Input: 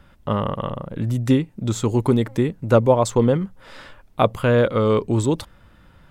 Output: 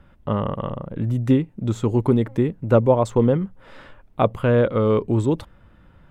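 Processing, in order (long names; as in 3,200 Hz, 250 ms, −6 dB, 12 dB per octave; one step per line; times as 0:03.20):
drawn EQ curve 370 Hz 0 dB, 2,900 Hz −5 dB, 4,700 Hz −11 dB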